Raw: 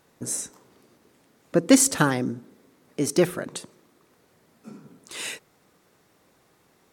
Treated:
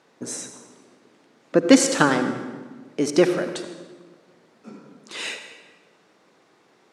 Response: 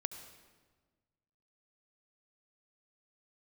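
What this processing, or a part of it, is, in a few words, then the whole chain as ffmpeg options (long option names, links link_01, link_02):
supermarket ceiling speaker: -filter_complex "[0:a]highpass=220,lowpass=5600[link_01];[1:a]atrim=start_sample=2205[link_02];[link_01][link_02]afir=irnorm=-1:irlink=0,volume=5dB"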